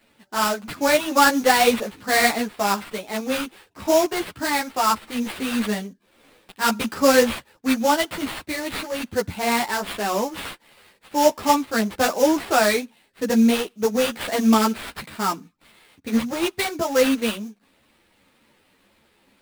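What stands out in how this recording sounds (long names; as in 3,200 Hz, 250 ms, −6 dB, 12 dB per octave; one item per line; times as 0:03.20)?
aliases and images of a low sample rate 6,300 Hz, jitter 20%
a shimmering, thickened sound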